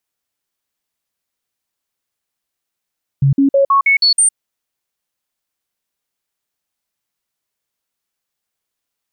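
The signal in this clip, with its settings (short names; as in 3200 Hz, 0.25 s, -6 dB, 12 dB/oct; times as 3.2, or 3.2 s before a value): stepped sine 138 Hz up, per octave 1, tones 7, 0.11 s, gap 0.05 s -8 dBFS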